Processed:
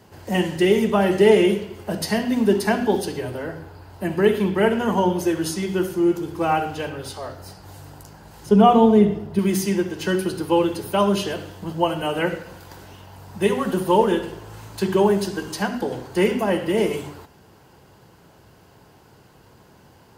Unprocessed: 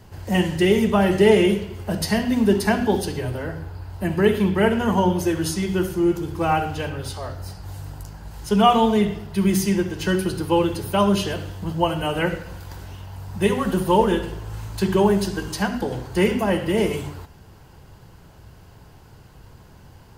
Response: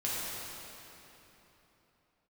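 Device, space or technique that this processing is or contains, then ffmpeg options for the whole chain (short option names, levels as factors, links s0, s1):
filter by subtraction: -filter_complex "[0:a]asettb=1/sr,asplit=3[s0][s1][s2];[s0]atrim=end=8.464[s3];[s1]atrim=start=8.46:end=9.39,asetpts=PTS-STARTPTS,afade=t=in:d=0.004:c=qsin,afade=t=out:st=0.926:d=0.004:c=qsin,tiltshelf=f=860:g=7[s4];[s2]atrim=start=9.386[s5];[s3][s4]acrossfade=d=0.004:c1=hsin:c2=qsin[s6];[s6][s5]acrossfade=d=0.004:c1=qsin:c2=hsin,asplit=2[s7][s8];[s8]lowpass=330,volume=-1[s9];[s7][s9]amix=inputs=2:normalize=0,volume=0.891"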